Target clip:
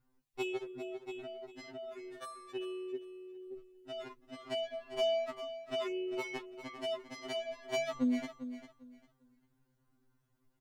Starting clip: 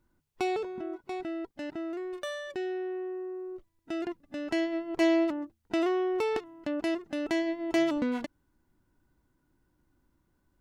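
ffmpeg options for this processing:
-filter_complex "[0:a]asplit=2[a][b];[b]aecho=0:1:399|798|1197:0.251|0.0578|0.0133[c];[a][c]amix=inputs=2:normalize=0,asettb=1/sr,asplit=3[d][e][f];[d]atrim=end=2.954[g];[e]atrim=start=2.95:end=3.53,asetpts=PTS-STARTPTS,afade=t=in:d=0.004:c=qsin,afade=t=out:st=0.576:d=0.004:c=qsin,acrossover=split=360|3000[h][i][j];[i]acompressor=threshold=-43dB:ratio=6[k];[h][k][j]amix=inputs=3:normalize=0[l];[f]atrim=start=3.526[m];[g][l]acrossfade=d=0.004:c1=hsin:c2=qsin[n];[n][m]acrossfade=d=0.004:c1=qsin:c2=hsin,afftfilt=real='re*2.45*eq(mod(b,6),0)':imag='im*2.45*eq(mod(b,6),0)':win_size=2048:overlap=0.75,volume=-1dB"

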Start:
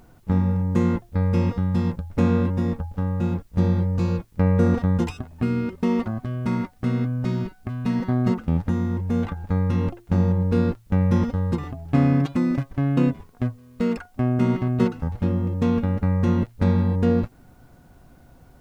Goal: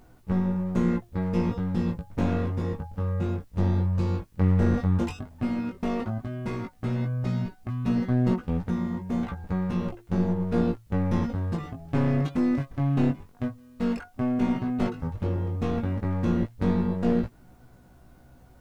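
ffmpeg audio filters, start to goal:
-af "aeval=exprs='clip(val(0),-1,0.0891)':c=same,flanger=delay=16:depth=4.7:speed=0.11"

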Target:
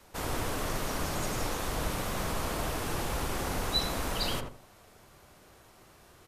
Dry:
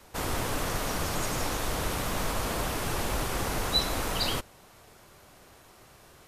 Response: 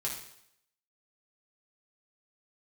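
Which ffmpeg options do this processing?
-filter_complex "[0:a]asplit=2[a][b];[b]adelay=82,lowpass=f=1k:p=1,volume=-3dB,asplit=2[c][d];[d]adelay=82,lowpass=f=1k:p=1,volume=0.29,asplit=2[e][f];[f]adelay=82,lowpass=f=1k:p=1,volume=0.29,asplit=2[g][h];[h]adelay=82,lowpass=f=1k:p=1,volume=0.29[i];[a][c][e][g][i]amix=inputs=5:normalize=0,volume=-3.5dB"

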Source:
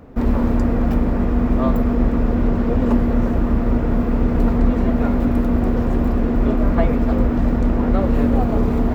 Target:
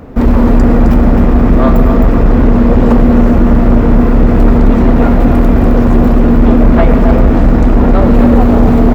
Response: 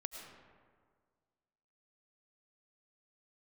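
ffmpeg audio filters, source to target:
-filter_complex "[0:a]aecho=1:1:264:0.422,asplit=2[a][b];[1:a]atrim=start_sample=2205[c];[b][c]afir=irnorm=-1:irlink=0,volume=4dB[d];[a][d]amix=inputs=2:normalize=0,aeval=exprs='1.41*sin(PI/2*1.78*val(0)/1.41)':c=same,volume=-4dB"

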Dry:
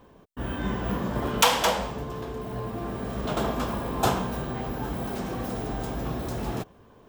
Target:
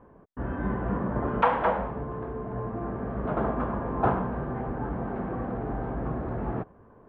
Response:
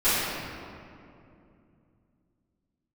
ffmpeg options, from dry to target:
-af "lowpass=f=1.7k:w=0.5412,lowpass=f=1.7k:w=1.3066"

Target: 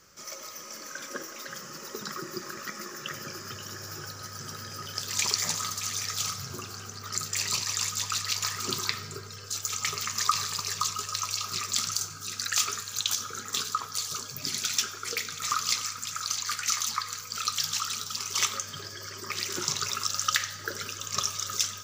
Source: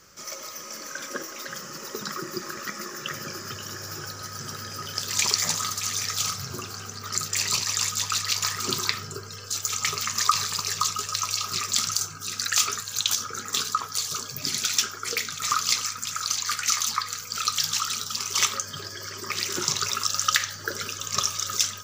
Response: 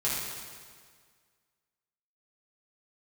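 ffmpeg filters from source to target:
-filter_complex "[0:a]asplit=2[a][b];[1:a]atrim=start_sample=2205,adelay=90[c];[b][c]afir=irnorm=-1:irlink=0,volume=-24.5dB[d];[a][d]amix=inputs=2:normalize=0,volume=-4dB"

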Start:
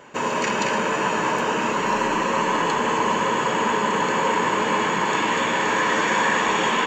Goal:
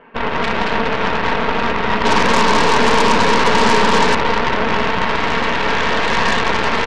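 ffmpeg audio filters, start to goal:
-filter_complex "[0:a]lowpass=f=2.6k:w=0.5412,lowpass=f=2.6k:w=1.3066,aecho=1:1:4.4:0.64,asettb=1/sr,asplit=3[a][b][c];[a]atrim=end=2.054[d];[b]atrim=start=2.05:end=4.15,asetpts=PTS-STARTPTS,afade=t=in:d=0.004:c=qsin,afade=t=out:st=2.096:d=0.004:c=qsin,acontrast=45[e];[c]atrim=start=4.146[f];[d][e]acrossfade=d=0.004:c1=hsin:c2=qsin[g];[g][f]acrossfade=d=0.004:c1=qsin:c2=hsin,aeval=exprs='0.596*(cos(1*acos(clip(val(0)/0.596,-1,1)))-cos(1*PI/2))+0.15*(cos(8*acos(clip(val(0)/0.596,-1,1)))-cos(8*PI/2))':c=same"

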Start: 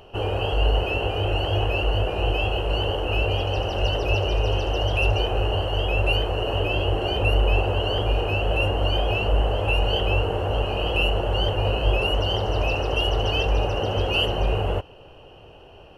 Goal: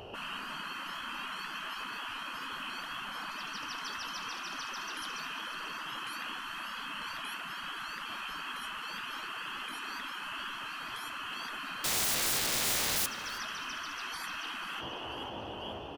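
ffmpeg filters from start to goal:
-filter_complex "[0:a]highpass=62,asplit=2[a][b];[b]asplit=5[c][d][e][f][g];[c]adelay=491,afreqshift=78,volume=-12.5dB[h];[d]adelay=982,afreqshift=156,volume=-18.9dB[i];[e]adelay=1473,afreqshift=234,volume=-25.3dB[j];[f]adelay=1964,afreqshift=312,volume=-31.6dB[k];[g]adelay=2455,afreqshift=390,volume=-38dB[l];[h][i][j][k][l]amix=inputs=5:normalize=0[m];[a][m]amix=inputs=2:normalize=0,asettb=1/sr,asplit=3[n][o][p];[n]atrim=end=11.844[q];[o]atrim=start=11.84:end=13.06,asetpts=PTS-STARTPTS,afade=t=in:d=0.004:c=qsin,afade=t=out:st=1.216:d=0.004:c=qsin,aeval=exprs='(mod(21.1*val(0)+1,2)-1)/21.1':c=same[r];[p]atrim=start=13.056[s];[q][r]acrossfade=d=0.004:c1=hsin:c2=qsin[t];[t][s]acrossfade=d=0.004:c1=qsin:c2=hsin,afftfilt=real='re*lt(hypot(re,im),0.0501)':imag='im*lt(hypot(re,im),0.0501)':win_size=1024:overlap=0.75,asplit=2[u][v];[v]adelay=322,lowpass=f=3.1k:p=1,volume=-13dB,asplit=2[w][x];[x]adelay=322,lowpass=f=3.1k:p=1,volume=0.53,asplit=2[y][z];[z]adelay=322,lowpass=f=3.1k:p=1,volume=0.53,asplit=2[aa][ab];[ab]adelay=322,lowpass=f=3.1k:p=1,volume=0.53,asplit=2[ac][ad];[ad]adelay=322,lowpass=f=3.1k:p=1,volume=0.53[ae];[w][y][aa][ac][ae]amix=inputs=5:normalize=0[af];[u][af]amix=inputs=2:normalize=0,volume=1.5dB"

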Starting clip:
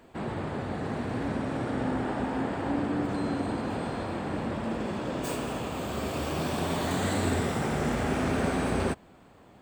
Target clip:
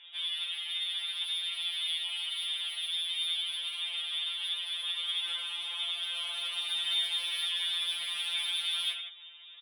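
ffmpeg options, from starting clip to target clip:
-filter_complex "[0:a]lowpass=f=3.2k:t=q:w=0.5098,lowpass=f=3.2k:t=q:w=0.6013,lowpass=f=3.2k:t=q:w=0.9,lowpass=f=3.2k:t=q:w=2.563,afreqshift=-3800,asplit=2[a][b];[b]acompressor=threshold=-41dB:ratio=6,volume=1dB[c];[a][c]amix=inputs=2:normalize=0,highpass=530,aemphasis=mode=production:type=50kf,aecho=1:1:84|159:0.398|0.237,asoftclip=type=tanh:threshold=-21dB,afftfilt=real='re*2.83*eq(mod(b,8),0)':imag='im*2.83*eq(mod(b,8),0)':win_size=2048:overlap=0.75,volume=-4dB"

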